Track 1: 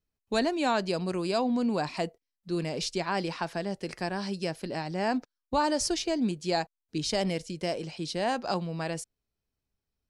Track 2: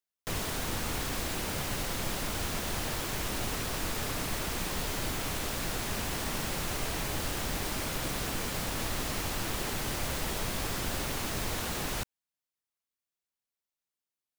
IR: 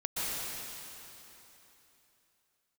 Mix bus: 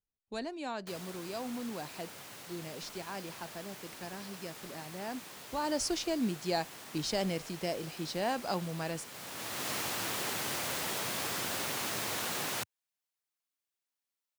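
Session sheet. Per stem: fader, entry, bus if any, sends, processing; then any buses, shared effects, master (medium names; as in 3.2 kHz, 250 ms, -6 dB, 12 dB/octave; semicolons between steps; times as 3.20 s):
5.50 s -12 dB -> 5.75 s -4 dB, 0.00 s, no send, none
+0.5 dB, 0.60 s, no send, high-pass 100 Hz 24 dB/octave; bass shelf 310 Hz -9.5 dB; auto duck -13 dB, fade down 1.00 s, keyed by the first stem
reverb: none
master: none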